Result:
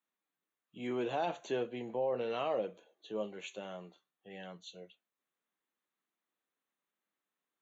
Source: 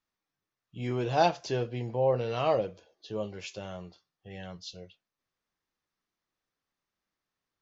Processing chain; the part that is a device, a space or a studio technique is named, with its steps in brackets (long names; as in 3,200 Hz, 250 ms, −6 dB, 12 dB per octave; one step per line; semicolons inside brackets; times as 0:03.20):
PA system with an anti-feedback notch (high-pass filter 190 Hz 24 dB per octave; Butterworth band-reject 5,100 Hz, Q 2.1; brickwall limiter −22 dBFS, peak gain reduction 10 dB)
level −3 dB